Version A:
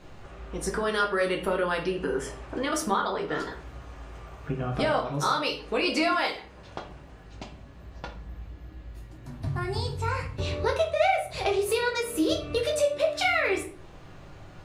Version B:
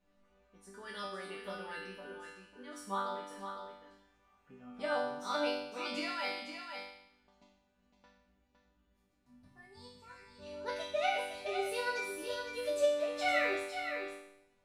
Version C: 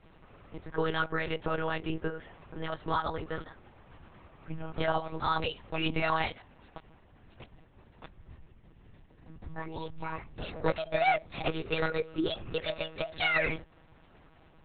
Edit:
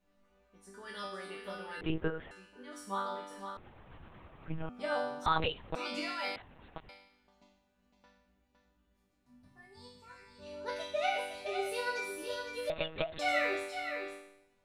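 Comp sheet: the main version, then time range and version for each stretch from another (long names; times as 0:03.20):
B
0:01.81–0:02.31: punch in from C
0:03.57–0:04.69: punch in from C
0:05.26–0:05.75: punch in from C
0:06.36–0:06.89: punch in from C
0:12.70–0:13.19: punch in from C
not used: A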